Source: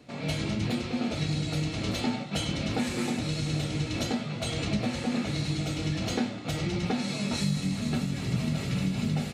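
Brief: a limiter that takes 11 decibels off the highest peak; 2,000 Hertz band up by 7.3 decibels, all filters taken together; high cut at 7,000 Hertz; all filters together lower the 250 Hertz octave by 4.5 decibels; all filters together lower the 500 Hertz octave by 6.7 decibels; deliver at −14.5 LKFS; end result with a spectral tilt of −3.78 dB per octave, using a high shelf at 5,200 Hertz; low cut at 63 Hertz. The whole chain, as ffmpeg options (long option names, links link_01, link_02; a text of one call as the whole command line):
ffmpeg -i in.wav -af "highpass=63,lowpass=7000,equalizer=frequency=250:width_type=o:gain=-4.5,equalizer=frequency=500:width_type=o:gain=-8,equalizer=frequency=2000:width_type=o:gain=8,highshelf=frequency=5200:gain=8,volume=20dB,alimiter=limit=-6.5dB:level=0:latency=1" out.wav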